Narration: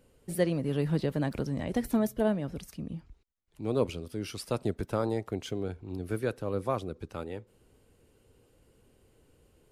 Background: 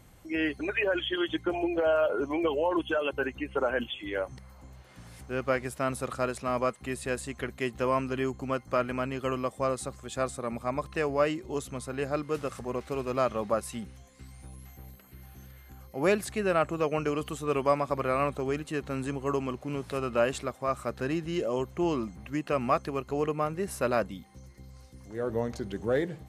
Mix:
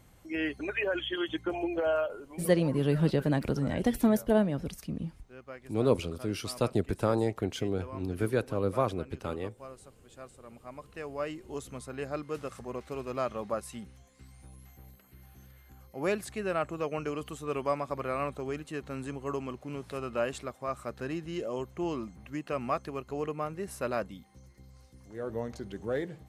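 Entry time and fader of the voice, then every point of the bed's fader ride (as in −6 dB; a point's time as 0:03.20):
2.10 s, +2.5 dB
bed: 0:01.99 −3 dB
0:02.23 −17.5 dB
0:10.39 −17.5 dB
0:11.63 −5 dB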